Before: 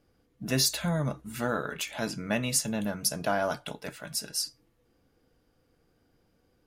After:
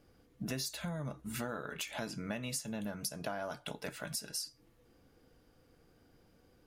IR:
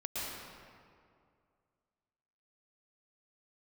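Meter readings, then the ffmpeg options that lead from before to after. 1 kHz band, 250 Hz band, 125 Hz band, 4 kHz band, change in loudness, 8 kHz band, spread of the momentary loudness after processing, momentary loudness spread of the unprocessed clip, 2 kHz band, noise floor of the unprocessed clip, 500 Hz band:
-10.0 dB, -8.5 dB, -9.5 dB, -10.0 dB, -10.0 dB, -10.5 dB, 5 LU, 10 LU, -9.0 dB, -70 dBFS, -10.0 dB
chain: -af "acompressor=threshold=0.01:ratio=6,volume=1.41"

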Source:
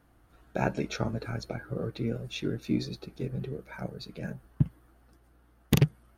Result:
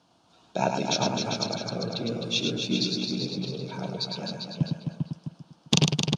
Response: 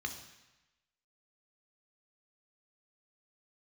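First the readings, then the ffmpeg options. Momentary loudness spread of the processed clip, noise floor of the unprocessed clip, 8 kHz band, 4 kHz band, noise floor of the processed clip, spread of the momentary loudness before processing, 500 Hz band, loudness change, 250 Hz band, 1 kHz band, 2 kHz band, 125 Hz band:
10 LU, -62 dBFS, +12.5 dB, +15.0 dB, -62 dBFS, 13 LU, +4.0 dB, +4.5 dB, +3.0 dB, +8.0 dB, +3.5 dB, +0.5 dB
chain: -filter_complex "[0:a]asplit=2[s0][s1];[s1]aecho=0:1:105|259.5:0.562|0.501[s2];[s0][s2]amix=inputs=2:normalize=0,aexciter=amount=6.5:drive=4.2:freq=2800,highpass=f=110:w=0.5412,highpass=f=110:w=1.3066,equalizer=f=120:t=q:w=4:g=-4,equalizer=f=180:t=q:w=4:g=5,equalizer=f=660:t=q:w=4:g=6,equalizer=f=950:t=q:w=4:g=9,equalizer=f=1900:t=q:w=4:g=-7,lowpass=f=5800:w=0.5412,lowpass=f=5800:w=1.3066,asplit=2[s3][s4];[s4]adelay=397,lowpass=f=4400:p=1,volume=0.631,asplit=2[s5][s6];[s6]adelay=397,lowpass=f=4400:p=1,volume=0.16,asplit=2[s7][s8];[s8]adelay=397,lowpass=f=4400:p=1,volume=0.16[s9];[s5][s7][s9]amix=inputs=3:normalize=0[s10];[s3][s10]amix=inputs=2:normalize=0,volume=0.841"

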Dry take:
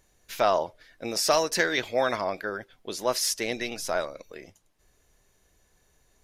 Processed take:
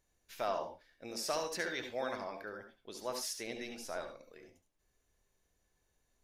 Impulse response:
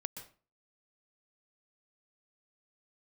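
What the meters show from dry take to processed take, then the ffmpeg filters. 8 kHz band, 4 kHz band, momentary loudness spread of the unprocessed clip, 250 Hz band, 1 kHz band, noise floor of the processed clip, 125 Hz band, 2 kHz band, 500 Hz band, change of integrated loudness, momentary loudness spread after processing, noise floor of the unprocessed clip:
-13.0 dB, -13.0 dB, 16 LU, -11.0 dB, -12.5 dB, -79 dBFS, -13.0 dB, -12.5 dB, -12.5 dB, -12.5 dB, 15 LU, -67 dBFS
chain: -filter_complex "[1:a]atrim=start_sample=2205,asetrate=79380,aresample=44100[s0];[0:a][s0]afir=irnorm=-1:irlink=0,volume=0.501"

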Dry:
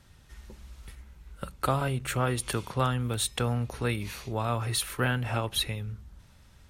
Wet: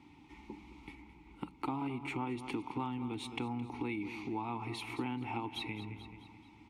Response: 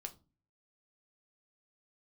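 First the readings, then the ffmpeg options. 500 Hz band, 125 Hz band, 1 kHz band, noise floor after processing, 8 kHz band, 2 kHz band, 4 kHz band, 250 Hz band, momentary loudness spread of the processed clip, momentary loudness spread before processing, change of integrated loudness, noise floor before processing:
-11.5 dB, -15.0 dB, -7.5 dB, -59 dBFS, -23.5 dB, -10.0 dB, -13.0 dB, -2.5 dB, 15 LU, 19 LU, -10.0 dB, -57 dBFS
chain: -filter_complex "[0:a]asplit=3[s0][s1][s2];[s0]bandpass=f=300:t=q:w=8,volume=1[s3];[s1]bandpass=f=870:t=q:w=8,volume=0.501[s4];[s2]bandpass=f=2240:t=q:w=8,volume=0.355[s5];[s3][s4][s5]amix=inputs=3:normalize=0,aecho=1:1:216|432|648|864:0.188|0.0791|0.0332|0.014,acompressor=threshold=0.00141:ratio=2.5,volume=7.08"

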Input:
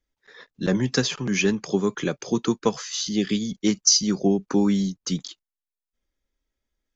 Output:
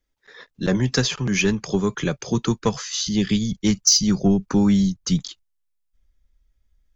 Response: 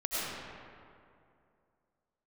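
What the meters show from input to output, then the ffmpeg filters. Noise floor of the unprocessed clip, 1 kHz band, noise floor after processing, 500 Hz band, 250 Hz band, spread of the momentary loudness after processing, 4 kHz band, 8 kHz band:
under -85 dBFS, +1.5 dB, -72 dBFS, -0.5 dB, +3.0 dB, 8 LU, +2.0 dB, no reading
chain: -af "acontrast=59,asubboost=boost=7.5:cutoff=120,volume=0.668"

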